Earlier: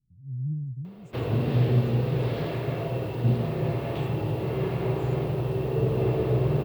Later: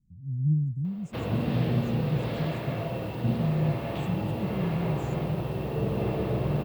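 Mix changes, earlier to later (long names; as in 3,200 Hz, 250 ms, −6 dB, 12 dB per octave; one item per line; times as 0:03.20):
speech +8.0 dB
master: add thirty-one-band graphic EQ 125 Hz −7 dB, 200 Hz +5 dB, 400 Hz −9 dB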